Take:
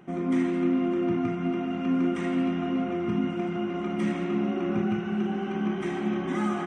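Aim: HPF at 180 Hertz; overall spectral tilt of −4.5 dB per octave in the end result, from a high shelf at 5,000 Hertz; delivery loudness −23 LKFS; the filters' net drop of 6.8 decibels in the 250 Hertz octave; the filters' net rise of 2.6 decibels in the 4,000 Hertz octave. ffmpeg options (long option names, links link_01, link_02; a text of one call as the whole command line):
ffmpeg -i in.wav -af "highpass=180,equalizer=frequency=250:width_type=o:gain=-7.5,equalizer=frequency=4000:width_type=o:gain=6.5,highshelf=frequency=5000:gain=-5,volume=10dB" out.wav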